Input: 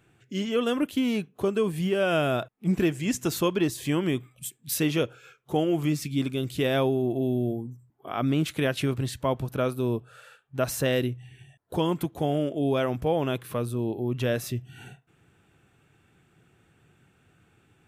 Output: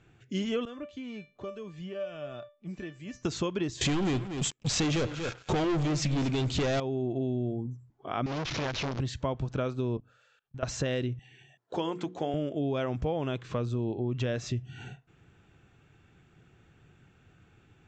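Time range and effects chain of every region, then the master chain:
0:00.65–0:03.25: high-frequency loss of the air 55 metres + tuned comb filter 590 Hz, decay 0.27 s, mix 90% + multiband upward and downward compressor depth 70%
0:03.81–0:06.80: leveller curve on the samples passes 5 + single-tap delay 237 ms −15.5 dB
0:08.26–0:09.00: linear delta modulator 32 kbit/s, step −26 dBFS + saturating transformer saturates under 1,100 Hz
0:09.97–0:10.63: mains-hum notches 50/100/150/200/250/300 Hz + output level in coarse steps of 21 dB + multiband upward and downward expander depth 40%
0:11.19–0:12.34: high-pass filter 270 Hz + mains-hum notches 60/120/180/240/300/360/420/480 Hz
whole clip: Butterworth low-pass 7,500 Hz 96 dB per octave; low-shelf EQ 70 Hz +11 dB; downward compressor, threshold −27 dBFS

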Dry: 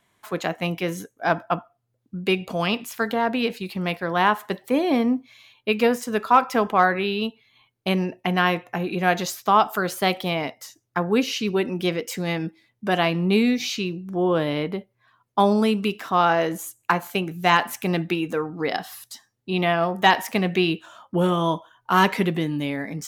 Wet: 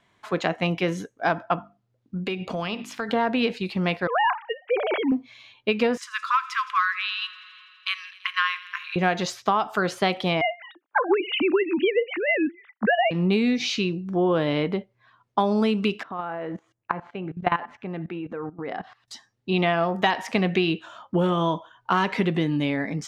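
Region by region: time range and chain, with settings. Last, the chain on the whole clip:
0:01.56–0:03.09: mains-hum notches 50/100/150/200/250/300/350 Hz + downward compressor, threshold −27 dBFS
0:04.07–0:05.12: three sine waves on the formant tracks + high-pass filter 610 Hz 6 dB per octave
0:05.97–0:08.96: linear-phase brick-wall high-pass 1,000 Hz + delay with a high-pass on its return 83 ms, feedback 81%, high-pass 2,100 Hz, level −18 dB
0:10.41–0:13.11: three sine waves on the formant tracks + parametric band 1,200 Hz +10 dB 2.3 octaves
0:16.03–0:19.08: low-pass filter 1,900 Hz + output level in coarse steps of 17 dB
whole clip: low-pass filter 5,200 Hz 12 dB per octave; downward compressor 10 to 1, threshold −20 dBFS; level +2.5 dB

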